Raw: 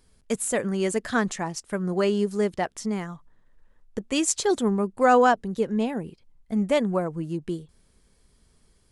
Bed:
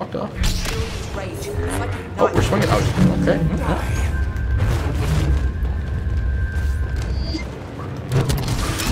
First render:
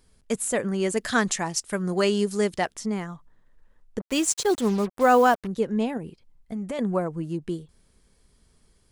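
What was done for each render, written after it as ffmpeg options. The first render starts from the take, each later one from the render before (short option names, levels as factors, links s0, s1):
-filter_complex "[0:a]asettb=1/sr,asplit=3[s0][s1][s2];[s0]atrim=end=0.974[s3];[s1]atrim=start=0.97:end=2.74,asetpts=PTS-STARTPTS,afade=t=in:d=0.004:c=qsin,afade=t=out:st=1.766:d=0.004:c=qsin,highshelf=f=2300:g=9[s4];[s2]atrim=start=2.736[s5];[s3][s4]acrossfade=d=0.004:c1=hsin:c2=qsin[s6];[s6][s5]acrossfade=d=0.004:c1=qsin:c2=hsin,asettb=1/sr,asplit=3[s7][s8][s9];[s7]atrim=end=4.004[s10];[s8]atrim=start=4:end=5.47,asetpts=PTS-STARTPTS,afade=t=in:d=0.004:c=qsin,afade=t=out:st=1.466:d=0.004:c=qsin,acrusher=bits=5:mix=0:aa=0.5[s11];[s9]atrim=start=5.466[s12];[s10][s11]acrossfade=d=0.004:c1=hsin:c2=qsin[s13];[s13][s12]acrossfade=d=0.004:c1=qsin:c2=hsin,asettb=1/sr,asplit=3[s14][s15][s16];[s14]atrim=end=5.974[s17];[s15]atrim=start=5.97:end=6.79,asetpts=PTS-STARTPTS,afade=t=in:d=0.004:c=qsin,afade=t=out:st=0.816:d=0.004:c=qsin,acompressor=threshold=0.0398:ratio=6:attack=3.2:release=140:knee=1:detection=peak[s18];[s16]atrim=start=6.786[s19];[s17][s18]acrossfade=d=0.004:c1=hsin:c2=qsin[s20];[s20][s19]acrossfade=d=0.004:c1=qsin:c2=hsin"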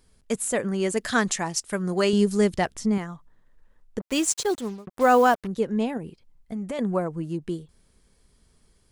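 -filter_complex "[0:a]asettb=1/sr,asplit=3[s0][s1][s2];[s0]atrim=end=2.134[s3];[s1]atrim=start=2.13:end=2.98,asetpts=PTS-STARTPTS,afade=t=in:d=0.004:c=qsin,afade=t=out:st=0.846:d=0.004:c=qsin,lowshelf=f=190:g=11.5[s4];[s2]atrim=start=2.976[s5];[s3][s4]acrossfade=d=0.004:c1=hsin:c2=qsin[s6];[s6][s5]acrossfade=d=0.004:c1=qsin:c2=hsin,asplit=2[s7][s8];[s7]atrim=end=4.87,asetpts=PTS-STARTPTS,afade=t=out:st=4.37:d=0.5[s9];[s8]atrim=start=4.87,asetpts=PTS-STARTPTS,afade=t=in:d=0.004:c=hsin[s10];[s9][s10]concat=n=2:v=0:a=1"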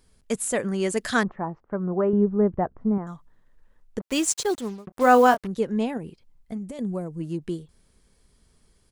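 -filter_complex "[0:a]asettb=1/sr,asplit=3[s0][s1][s2];[s0]atrim=end=1.234[s3];[s1]atrim=start=1.23:end=3.07,asetpts=PTS-STARTPTS,afade=t=in:d=0.004:c=qsin,afade=t=out:st=1.836:d=0.004:c=qsin,lowpass=f=1200:w=0.5412,lowpass=f=1200:w=1.3066[s4];[s2]atrim=start=3.066[s5];[s3][s4]acrossfade=d=0.004:c1=hsin:c2=qsin[s6];[s6][s5]acrossfade=d=0.004:c1=qsin:c2=hsin,asplit=3[s7][s8][s9];[s7]afade=t=out:st=4.9:d=0.02[s10];[s8]asplit=2[s11][s12];[s12]adelay=24,volume=0.398[s13];[s11][s13]amix=inputs=2:normalize=0,afade=t=in:st=4.9:d=0.02,afade=t=out:st=5.43:d=0.02[s14];[s9]afade=t=in:st=5.43:d=0.02[s15];[s10][s14][s15]amix=inputs=3:normalize=0,asplit=3[s16][s17][s18];[s16]afade=t=out:st=6.57:d=0.02[s19];[s17]equalizer=f=1400:w=0.39:g=-13,afade=t=in:st=6.57:d=0.02,afade=t=out:st=7.19:d=0.02[s20];[s18]afade=t=in:st=7.19:d=0.02[s21];[s19][s20][s21]amix=inputs=3:normalize=0"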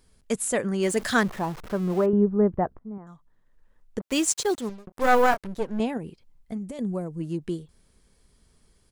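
-filter_complex "[0:a]asettb=1/sr,asplit=3[s0][s1][s2];[s0]atrim=end=0.834[s3];[s1]atrim=start=0.83:end=2.06,asetpts=PTS-STARTPTS,afade=t=in:d=0.004:c=qsin,afade=t=out:st=1.226:d=0.004:c=qsin,aeval=exprs='val(0)+0.5*0.0168*sgn(val(0))':c=same[s4];[s2]atrim=start=2.056[s5];[s3][s4]acrossfade=d=0.004:c1=hsin:c2=qsin[s6];[s6][s5]acrossfade=d=0.004:c1=qsin:c2=hsin,asettb=1/sr,asplit=3[s7][s8][s9];[s7]atrim=end=4.694[s10];[s8]atrim=start=4.69:end=5.8,asetpts=PTS-STARTPTS,afade=t=in:d=0.004:c=qsin,afade=t=out:st=1.106:d=0.004:c=qsin,aeval=exprs='if(lt(val(0),0),0.251*val(0),val(0))':c=same[s11];[s9]atrim=start=5.796[s12];[s10][s11]acrossfade=d=0.004:c1=hsin:c2=qsin[s13];[s13][s12]acrossfade=d=0.004:c1=qsin:c2=hsin,asplit=2[s14][s15];[s14]atrim=end=2.79,asetpts=PTS-STARTPTS,afade=t=out:st=2.786:d=0.004:c=hsin:silence=0.112202[s16];[s15]atrim=start=2.79,asetpts=PTS-STARTPTS,afade=t=in:d=1.24:silence=0.112202[s17];[s16][s17]concat=n=2:v=0:a=1"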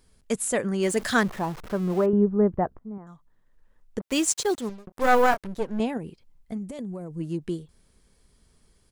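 -filter_complex "[0:a]asettb=1/sr,asplit=3[s0][s1][s2];[s0]atrim=end=6.634[s3];[s1]atrim=start=6.63:end=7.12,asetpts=PTS-STARTPTS,afade=t=in:d=0.004:c=qsin,afade=t=out:st=0.486:d=0.004:c=qsin,acompressor=threshold=0.0282:ratio=6:attack=3.2:release=140:knee=1:detection=peak[s4];[s2]atrim=start=7.116[s5];[s3][s4]acrossfade=d=0.004:c1=hsin:c2=qsin[s6];[s6][s5]acrossfade=d=0.004:c1=qsin:c2=hsin"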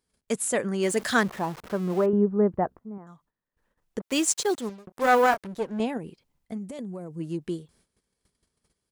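-af "agate=range=0.2:threshold=0.00141:ratio=16:detection=peak,highpass=f=150:p=1"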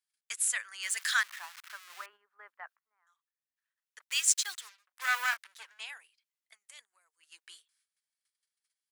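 -af "highpass=f=1500:w=0.5412,highpass=f=1500:w=1.3066,agate=range=0.355:threshold=0.00158:ratio=16:detection=peak"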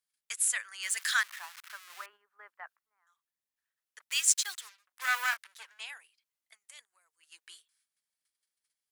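-af "equalizer=f=12000:t=o:w=0.77:g=2.5"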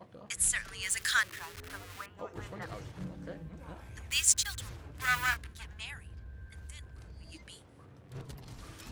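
-filter_complex "[1:a]volume=0.0473[s0];[0:a][s0]amix=inputs=2:normalize=0"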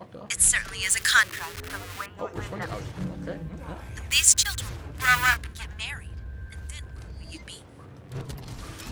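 -af "volume=2.82,alimiter=limit=0.891:level=0:latency=1"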